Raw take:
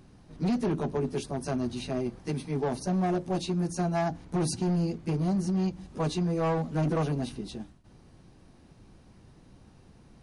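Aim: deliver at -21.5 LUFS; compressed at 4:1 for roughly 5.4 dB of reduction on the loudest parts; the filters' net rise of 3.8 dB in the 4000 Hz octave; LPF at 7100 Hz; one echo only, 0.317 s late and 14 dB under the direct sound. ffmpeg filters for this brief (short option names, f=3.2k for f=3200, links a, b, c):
-af "lowpass=7.1k,equalizer=f=4k:t=o:g=5,acompressor=threshold=-31dB:ratio=4,aecho=1:1:317:0.2,volume=13dB"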